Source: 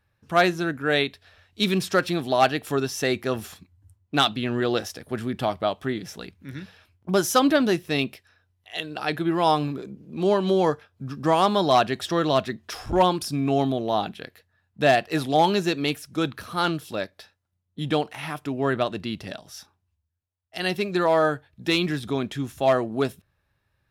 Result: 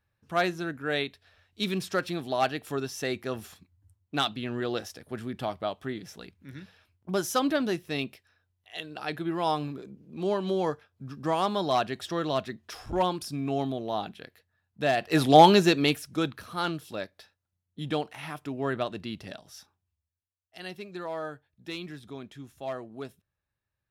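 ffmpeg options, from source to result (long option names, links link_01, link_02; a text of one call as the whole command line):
ffmpeg -i in.wav -af "volume=5dB,afade=type=in:start_time=14.95:duration=0.37:silence=0.251189,afade=type=out:start_time=15.32:duration=1.07:silence=0.281838,afade=type=out:start_time=19.46:duration=1.3:silence=0.354813" out.wav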